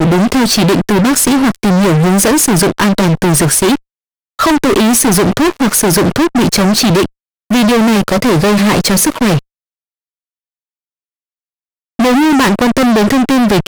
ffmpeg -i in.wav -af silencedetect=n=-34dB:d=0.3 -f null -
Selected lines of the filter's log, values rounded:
silence_start: 3.78
silence_end: 4.39 | silence_duration: 0.61
silence_start: 7.07
silence_end: 7.50 | silence_duration: 0.43
silence_start: 9.39
silence_end: 11.99 | silence_duration: 2.60